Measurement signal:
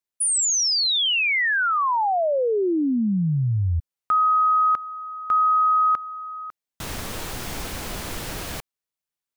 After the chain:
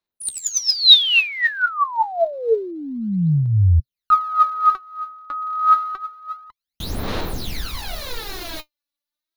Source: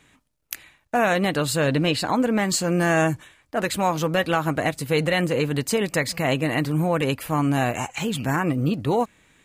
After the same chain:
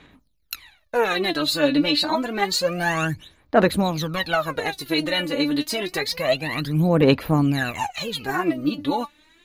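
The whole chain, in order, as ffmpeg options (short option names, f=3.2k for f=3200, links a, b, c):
-af "aphaser=in_gain=1:out_gain=1:delay=3.5:decay=0.79:speed=0.28:type=sinusoidal,equalizer=f=125:t=o:w=0.33:g=-8,equalizer=f=4k:t=o:w=0.33:g=10,equalizer=f=8k:t=o:w=0.33:g=-11,volume=-4dB"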